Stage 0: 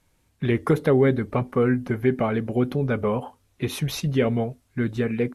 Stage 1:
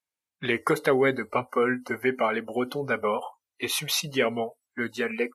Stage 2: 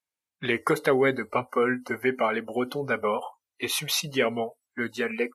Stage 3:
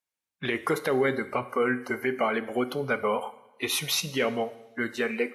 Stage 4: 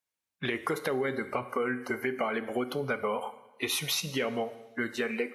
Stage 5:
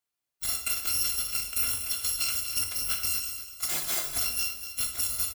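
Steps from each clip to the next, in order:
noise reduction from a noise print of the clip's start 26 dB; high-pass filter 1,200 Hz 6 dB per octave; level +6.5 dB
no processing that can be heard
brickwall limiter −15.5 dBFS, peak gain reduction 6.5 dB; coupled-rooms reverb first 0.87 s, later 2.8 s, from −25 dB, DRR 12.5 dB
downward compressor 4 to 1, threshold −27 dBFS, peak gain reduction 7 dB
samples in bit-reversed order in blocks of 256 samples; repeating echo 242 ms, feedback 31%, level −10.5 dB; dense smooth reverb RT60 0.61 s, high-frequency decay 0.9×, DRR 3.5 dB

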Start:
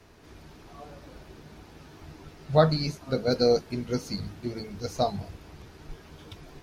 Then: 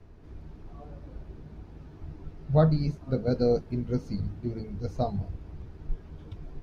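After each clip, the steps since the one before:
spectral tilt −3.5 dB per octave
level −6.5 dB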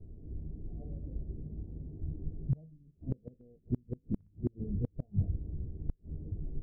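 Gaussian smoothing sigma 19 samples
gate with flip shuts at −23 dBFS, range −34 dB
level +3.5 dB

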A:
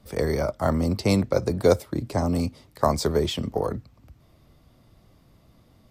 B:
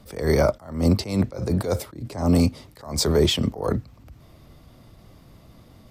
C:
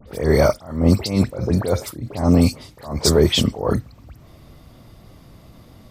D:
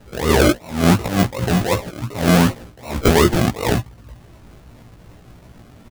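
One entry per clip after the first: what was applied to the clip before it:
boost into a limiter +14.5 dB; level that may rise only so fast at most 120 dB per second; level −7 dB
all-pass dispersion highs, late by 77 ms, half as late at 2,600 Hz; level +4 dB
sample-and-hold swept by an LFO 38×, swing 60% 2.7 Hz; double-tracking delay 17 ms −3.5 dB

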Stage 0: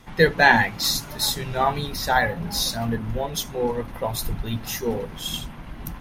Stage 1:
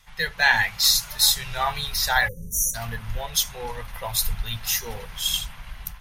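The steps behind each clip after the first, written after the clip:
guitar amp tone stack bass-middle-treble 10-0-10
time-frequency box erased 0:02.28–0:02.74, 560–5,700 Hz
automatic gain control gain up to 7.5 dB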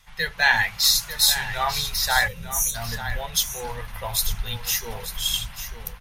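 single-tap delay 894 ms −11 dB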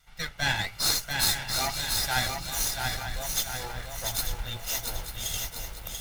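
lower of the sound and its delayed copy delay 1.4 ms
feedback echo at a low word length 687 ms, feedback 55%, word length 7 bits, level −4 dB
level −5.5 dB

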